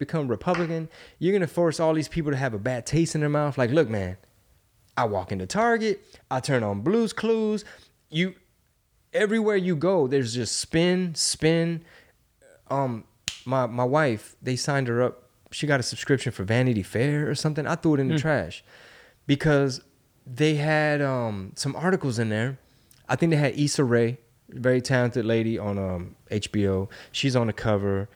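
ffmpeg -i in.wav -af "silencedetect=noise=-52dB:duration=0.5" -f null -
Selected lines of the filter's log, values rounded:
silence_start: 8.43
silence_end: 9.13 | silence_duration: 0.71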